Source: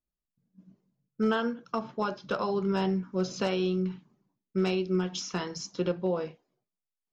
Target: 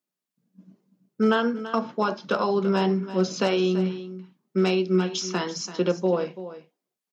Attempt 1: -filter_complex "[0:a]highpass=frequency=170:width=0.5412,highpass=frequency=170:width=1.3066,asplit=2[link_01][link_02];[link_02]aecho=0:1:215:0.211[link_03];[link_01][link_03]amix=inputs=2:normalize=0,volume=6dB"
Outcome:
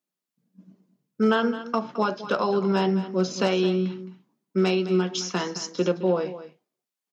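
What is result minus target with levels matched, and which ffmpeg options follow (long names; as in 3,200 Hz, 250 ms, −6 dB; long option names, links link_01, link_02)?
echo 120 ms early
-filter_complex "[0:a]highpass=frequency=170:width=0.5412,highpass=frequency=170:width=1.3066,asplit=2[link_01][link_02];[link_02]aecho=0:1:335:0.211[link_03];[link_01][link_03]amix=inputs=2:normalize=0,volume=6dB"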